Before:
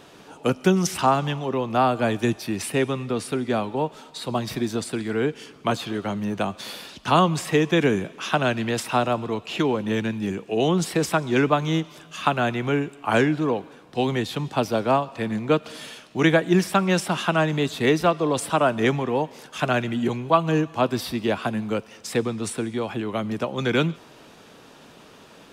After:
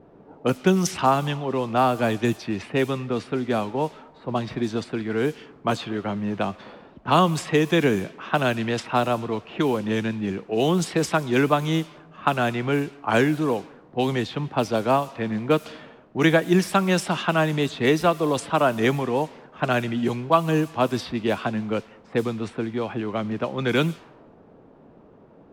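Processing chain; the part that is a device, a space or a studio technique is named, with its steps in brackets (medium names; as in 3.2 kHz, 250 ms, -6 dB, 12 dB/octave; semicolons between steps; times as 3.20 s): cassette deck with a dynamic noise filter (white noise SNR 24 dB; level-controlled noise filter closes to 540 Hz, open at -17.5 dBFS)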